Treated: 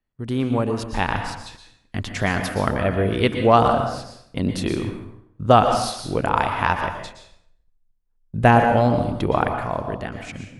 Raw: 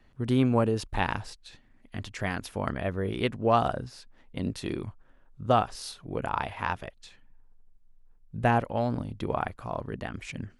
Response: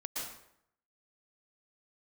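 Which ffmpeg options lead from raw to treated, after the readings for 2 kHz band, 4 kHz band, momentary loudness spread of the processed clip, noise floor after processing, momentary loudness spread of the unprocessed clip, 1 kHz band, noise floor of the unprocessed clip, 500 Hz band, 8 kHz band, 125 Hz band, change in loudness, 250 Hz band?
+9.5 dB, +9.0 dB, 17 LU, −64 dBFS, 16 LU, +10.0 dB, −59 dBFS, +9.0 dB, +9.0 dB, +8.0 dB, +9.0 dB, +7.5 dB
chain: -filter_complex "[0:a]agate=range=-21dB:threshold=-49dB:ratio=16:detection=peak,dynaudnorm=framelen=250:gausssize=9:maxgain=11.5dB,asplit=2[link_01][link_02];[1:a]atrim=start_sample=2205[link_03];[link_02][link_03]afir=irnorm=-1:irlink=0,volume=-2.5dB[link_04];[link_01][link_04]amix=inputs=2:normalize=0,volume=-3dB"

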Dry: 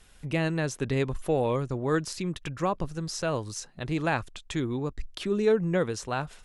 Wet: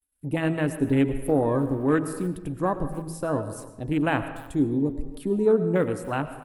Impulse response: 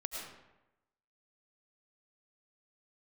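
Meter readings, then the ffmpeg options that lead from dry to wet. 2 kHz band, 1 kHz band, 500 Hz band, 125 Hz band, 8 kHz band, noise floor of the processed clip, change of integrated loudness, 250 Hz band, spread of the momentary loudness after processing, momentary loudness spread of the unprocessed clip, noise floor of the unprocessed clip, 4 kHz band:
+0.5 dB, +2.0 dB, +3.0 dB, +2.0 dB, −4.0 dB, −46 dBFS, +4.0 dB, +6.5 dB, 9 LU, 8 LU, −54 dBFS, −6.0 dB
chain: -filter_complex "[0:a]bandreject=frequency=81.89:width_type=h:width=4,bandreject=frequency=163.78:width_type=h:width=4,bandreject=frequency=245.67:width_type=h:width=4,bandreject=frequency=327.56:width_type=h:width=4,bandreject=frequency=409.45:width_type=h:width=4,bandreject=frequency=491.34:width_type=h:width=4,bandreject=frequency=573.23:width_type=h:width=4,bandreject=frequency=655.12:width_type=h:width=4,bandreject=frequency=737.01:width_type=h:width=4,bandreject=frequency=818.9:width_type=h:width=4,bandreject=frequency=900.79:width_type=h:width=4,bandreject=frequency=982.68:width_type=h:width=4,bandreject=frequency=1064.57:width_type=h:width=4,bandreject=frequency=1146.46:width_type=h:width=4,bandreject=frequency=1228.35:width_type=h:width=4,bandreject=frequency=1310.24:width_type=h:width=4,bandreject=frequency=1392.13:width_type=h:width=4,bandreject=frequency=1474.02:width_type=h:width=4,bandreject=frequency=1555.91:width_type=h:width=4,bandreject=frequency=1637.8:width_type=h:width=4,bandreject=frequency=1719.69:width_type=h:width=4,agate=range=-33dB:threshold=-43dB:ratio=3:detection=peak,equalizer=frequency=280:width=6.6:gain=11.5,afwtdn=0.02,asplit=2[link_01][link_02];[link_02]adelay=290,highpass=300,lowpass=3400,asoftclip=type=hard:threshold=-21dB,volume=-19dB[link_03];[link_01][link_03]amix=inputs=2:normalize=0,aexciter=amount=7.4:drive=8.5:freq=8800,asplit=2[link_04][link_05];[1:a]atrim=start_sample=2205[link_06];[link_05][link_06]afir=irnorm=-1:irlink=0,volume=-7dB[link_07];[link_04][link_07]amix=inputs=2:normalize=0"

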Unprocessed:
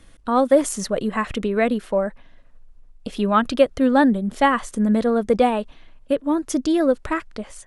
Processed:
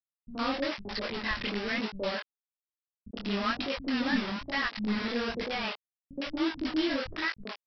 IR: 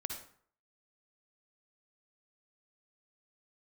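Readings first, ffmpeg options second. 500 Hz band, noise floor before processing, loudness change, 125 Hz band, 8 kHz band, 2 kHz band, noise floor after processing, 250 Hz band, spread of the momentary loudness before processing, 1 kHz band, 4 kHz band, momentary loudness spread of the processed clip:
−16.0 dB, −49 dBFS, −11.5 dB, can't be measured, below −20 dB, −3.5 dB, below −85 dBFS, −12.0 dB, 10 LU, −14.0 dB, +1.0 dB, 9 LU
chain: -filter_complex "[0:a]equalizer=frequency=125:width_type=o:width=1:gain=-10,equalizer=frequency=500:width_type=o:width=1:gain=-5,equalizer=frequency=1000:width_type=o:width=1:gain=-8,equalizer=frequency=2000:width_type=o:width=1:gain=8,alimiter=limit=-18dB:level=0:latency=1:release=137,aresample=11025,acrusher=bits=4:mix=0:aa=0.000001,aresample=44100,flanger=delay=18.5:depth=7.6:speed=1.1,acrossover=split=180|570[link_01][link_02][link_03];[link_02]adelay=70[link_04];[link_03]adelay=110[link_05];[link_01][link_04][link_05]amix=inputs=3:normalize=0"

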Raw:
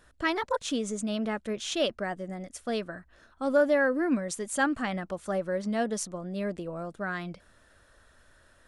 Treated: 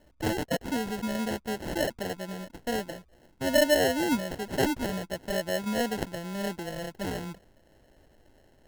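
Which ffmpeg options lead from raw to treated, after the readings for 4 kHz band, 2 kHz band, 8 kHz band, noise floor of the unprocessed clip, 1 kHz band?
+3.0 dB, −1.0 dB, 0.0 dB, −62 dBFS, −0.5 dB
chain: -af "acrusher=samples=37:mix=1:aa=0.000001"

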